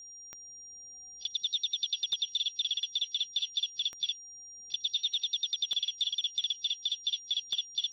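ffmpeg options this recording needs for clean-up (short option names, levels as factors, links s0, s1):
-af "adeclick=t=4,bandreject=f=5700:w=30"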